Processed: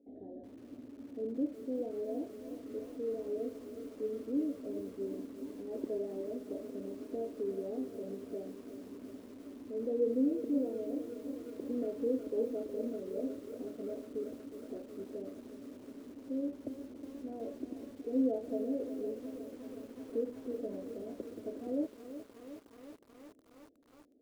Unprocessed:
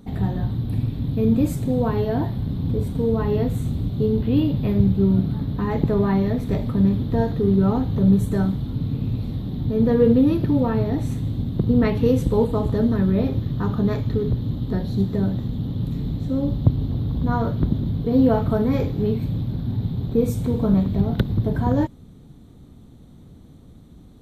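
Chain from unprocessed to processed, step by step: elliptic band-pass 270–610 Hz, stop band 40 dB; peaking EQ 380 Hz -13.5 dB 2.2 oct; bit-crushed delay 365 ms, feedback 80%, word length 9-bit, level -11.5 dB

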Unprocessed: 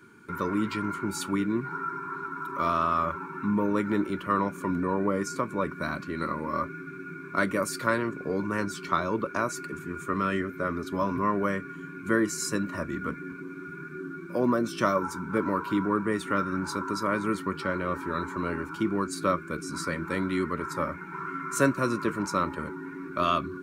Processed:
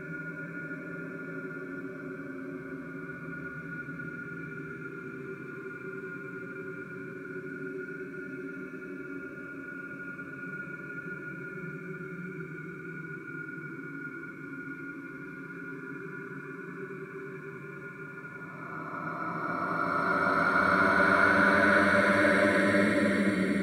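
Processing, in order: bucket-brigade echo 242 ms, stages 1024, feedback 57%, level -18 dB; Paulstretch 34×, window 0.10 s, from 6.77 s

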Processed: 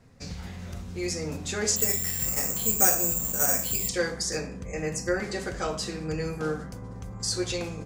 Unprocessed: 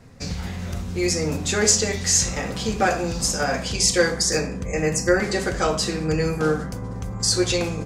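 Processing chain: 1.76–3.89 s: careless resampling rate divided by 6×, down filtered, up zero stuff; trim -8.5 dB

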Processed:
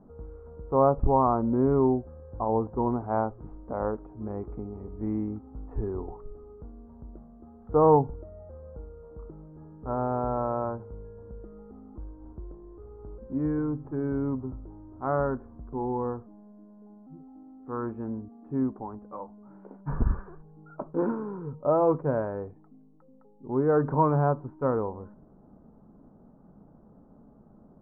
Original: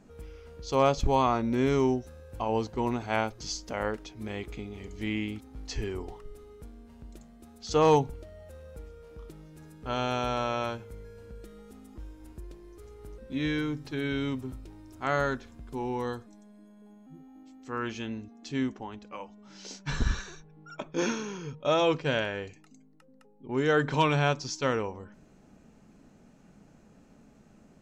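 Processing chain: steep low-pass 1.2 kHz 36 dB/octave; trim +2.5 dB

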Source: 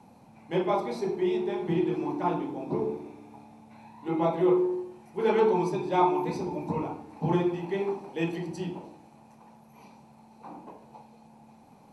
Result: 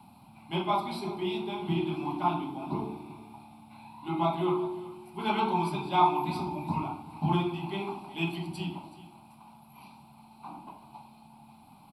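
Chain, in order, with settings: treble shelf 2.9 kHz +8.5 dB; static phaser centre 1.8 kHz, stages 6; delay 376 ms -17 dB; trim +2 dB

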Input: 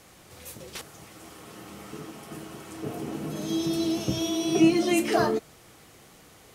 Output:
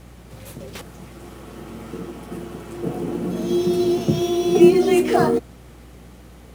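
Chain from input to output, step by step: bass shelf 450 Hz +8 dB; in parallel at -6 dB: sample-rate reducer 9.5 kHz, jitter 20%; on the sum: frequency shift +25 Hz; hum 60 Hz, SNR 23 dB; trim -1 dB

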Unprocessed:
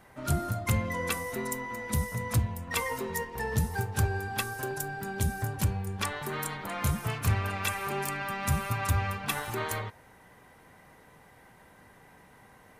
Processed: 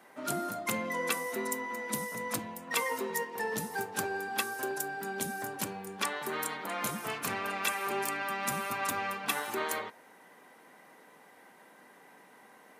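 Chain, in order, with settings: high-pass 220 Hz 24 dB/octave

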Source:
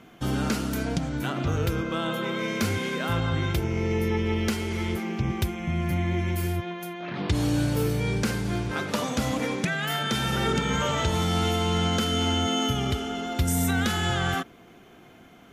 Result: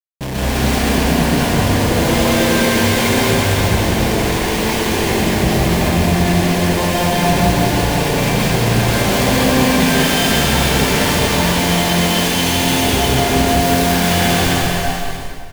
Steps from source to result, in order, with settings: tracing distortion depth 0.24 ms; 6.04–6.82 s: high-pass 72 Hz 12 dB/octave; Schmitt trigger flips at -39.5 dBFS; peaking EQ 1.3 kHz -14 dB 0.21 oct; on a send: bouncing-ball echo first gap 210 ms, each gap 0.85×, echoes 5; on the sum: plate-style reverb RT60 1.6 s, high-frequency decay 0.8×, pre-delay 110 ms, DRR -6.5 dB; trim +3.5 dB

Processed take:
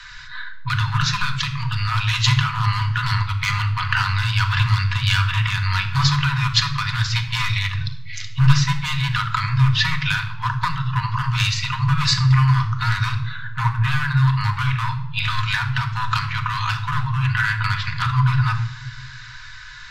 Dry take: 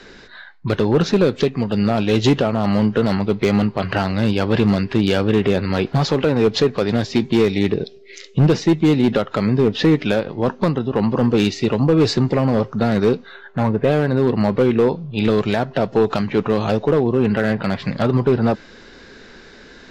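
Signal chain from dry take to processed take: Chebyshev band-stop 140–970 Hz, order 5; hum notches 50/100/150 Hz; simulated room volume 2800 m³, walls furnished, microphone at 1.9 m; trim +5 dB

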